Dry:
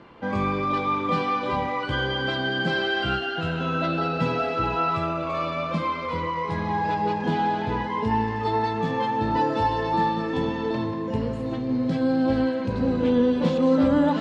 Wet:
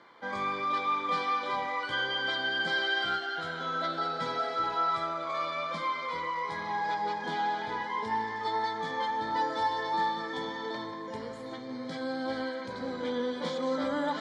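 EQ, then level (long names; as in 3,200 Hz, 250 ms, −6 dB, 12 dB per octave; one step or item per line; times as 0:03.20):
high-pass filter 1,400 Hz 6 dB per octave
Butterworth band-reject 2,700 Hz, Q 4.2
0.0 dB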